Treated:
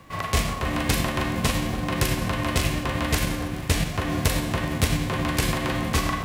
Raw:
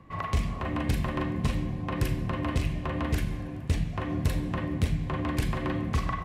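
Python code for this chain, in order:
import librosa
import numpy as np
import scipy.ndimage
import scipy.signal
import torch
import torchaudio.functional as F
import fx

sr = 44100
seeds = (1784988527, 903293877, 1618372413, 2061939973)

y = fx.envelope_flatten(x, sr, power=0.6)
y = fx.echo_alternate(y, sr, ms=289, hz=1400.0, feedback_pct=56, wet_db=-9)
y = y * librosa.db_to_amplitude(3.5)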